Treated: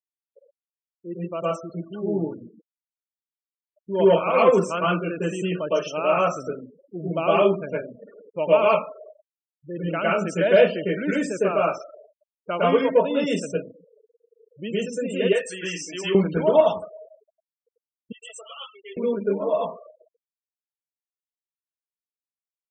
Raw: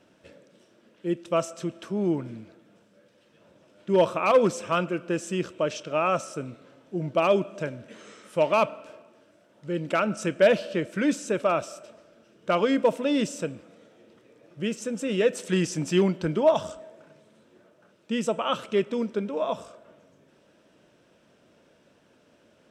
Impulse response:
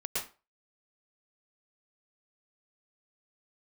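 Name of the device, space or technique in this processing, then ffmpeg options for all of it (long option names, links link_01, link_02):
far laptop microphone: -filter_complex "[0:a]lowshelf=frequency=150:gain=4[link_01];[1:a]atrim=start_sample=2205[link_02];[link_01][link_02]afir=irnorm=-1:irlink=0,highpass=frequency=170:poles=1,dynaudnorm=framelen=750:gausssize=9:maxgain=16dB,asettb=1/sr,asplit=3[link_03][link_04][link_05];[link_03]atrim=end=15.334[link_06];[link_04]atrim=start=15.33:end=16.15,asetpts=PTS-STARTPTS,afade=type=in:duration=0.004:curve=qsin,afade=type=out:start_time=0.816:duration=0.004:curve=qsin,highpass=frequency=1100:poles=1[link_07];[link_05]atrim=start=16.146[link_08];[link_06][link_07]acrossfade=duration=0.004:curve1=hsin:curve2=qsin[link_09];[link_09][link_08]acrossfade=duration=0.004:curve1=qsin:curve2=hsin,asettb=1/sr,asplit=3[link_10][link_11][link_12];[link_10]atrim=end=18.124[link_13];[link_11]atrim=start=18.12:end=18.97,asetpts=PTS-STARTPTS,afade=type=in:duration=0.004:curve=qsin,afade=type=out:start_time=0.846:duration=0.004:curve=qsin,aderivative[link_14];[link_12]atrim=start=18.966[link_15];[link_13][link_14]acrossfade=duration=0.004:curve1=hsin:curve2=qsin[link_16];[link_16][link_15]acrossfade=duration=0.004:curve1=qsin:curve2=hsin,afftfilt=real='re*gte(hypot(re,im),0.0355)':imag='im*gte(hypot(re,im),0.0355)':win_size=1024:overlap=0.75,volume=-4dB"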